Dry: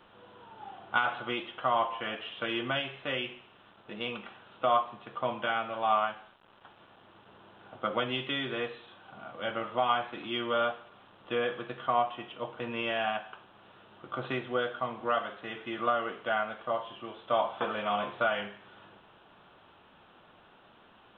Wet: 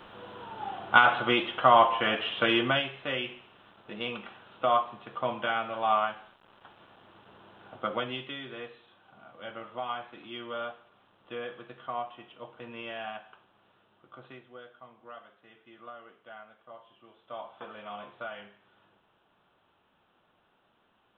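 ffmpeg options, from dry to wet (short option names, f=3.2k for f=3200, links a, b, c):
-af "volume=15dB,afade=t=out:st=2.49:d=0.42:silence=0.421697,afade=t=out:st=7.74:d=0.63:silence=0.375837,afade=t=out:st=13.33:d=1.18:silence=0.316228,afade=t=in:st=16.67:d=1.17:silence=0.473151"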